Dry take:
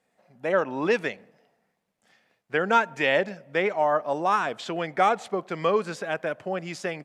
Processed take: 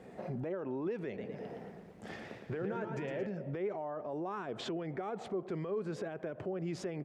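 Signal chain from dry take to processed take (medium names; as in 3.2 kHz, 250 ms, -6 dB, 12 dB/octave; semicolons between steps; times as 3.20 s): high-pass 52 Hz; tilt EQ -3.5 dB/octave; compression 8:1, threshold -45 dBFS, peak gain reduction 29 dB; peak limiter -49 dBFS, peak gain reduction 18 dB; peaking EQ 380 Hz +8.5 dB 0.43 oct; 1.06–3.27 s: modulated delay 115 ms, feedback 53%, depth 123 cents, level -5.5 dB; trim +16 dB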